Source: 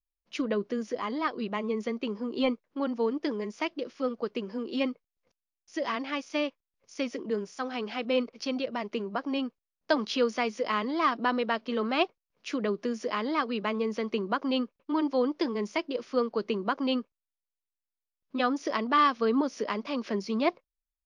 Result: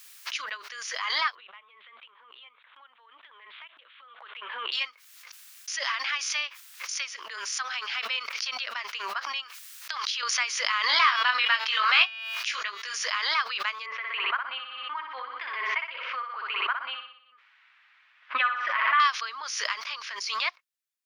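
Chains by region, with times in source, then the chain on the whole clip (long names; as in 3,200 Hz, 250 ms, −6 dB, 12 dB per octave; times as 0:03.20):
0:01.35–0:04.72: Butterworth low-pass 3,700 Hz 96 dB per octave + parametric band 2,100 Hz −4.5 dB 1.5 octaves + downward compressor, threshold −41 dBFS
0:09.43–0:10.23: tilt shelving filter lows −4.5 dB, about 910 Hz + downward compressor 10 to 1, threshold −32 dBFS
0:10.87–0:12.98: hum removal 223.5 Hz, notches 40 + dynamic equaliser 2,600 Hz, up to +4 dB, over −43 dBFS, Q 1.2 + double-tracking delay 20 ms −5 dB
0:13.86–0:19.00: low-pass filter 2,500 Hz 24 dB per octave + comb filter 7.4 ms, depth 35% + repeating echo 61 ms, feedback 52%, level −6 dB
whole clip: high-pass filter 1,300 Hz 24 dB per octave; background raised ahead of every attack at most 33 dB per second; level +6 dB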